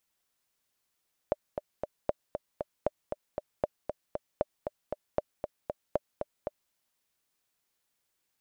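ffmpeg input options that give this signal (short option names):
-f lavfi -i "aevalsrc='pow(10,(-13-6.5*gte(mod(t,3*60/233),60/233))/20)*sin(2*PI*597*mod(t,60/233))*exp(-6.91*mod(t,60/233)/0.03)':d=5.4:s=44100"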